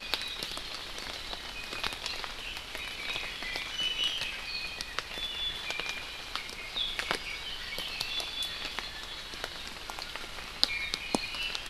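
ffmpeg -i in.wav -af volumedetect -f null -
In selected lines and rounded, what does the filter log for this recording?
mean_volume: -36.5 dB
max_volume: -1.4 dB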